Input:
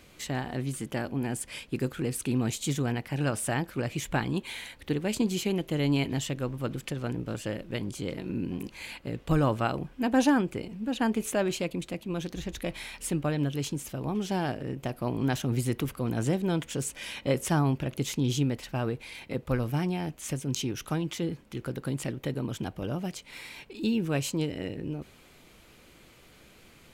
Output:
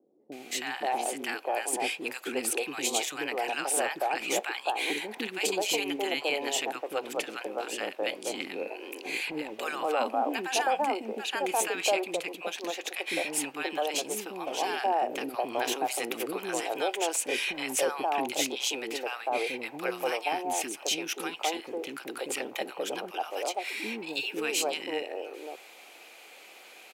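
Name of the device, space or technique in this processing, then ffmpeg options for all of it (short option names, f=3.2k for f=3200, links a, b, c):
laptop speaker: -filter_complex "[0:a]highpass=f=380:w=0.5412,highpass=f=380:w=1.3066,equalizer=f=780:t=o:w=0.32:g=9.5,equalizer=f=2.5k:t=o:w=0.29:g=6.5,alimiter=limit=-21dB:level=0:latency=1:release=13,acrossover=split=360|1100[a][b][c];[c]adelay=320[d];[b]adelay=530[e];[a][e][d]amix=inputs=3:normalize=0,volume=5.5dB"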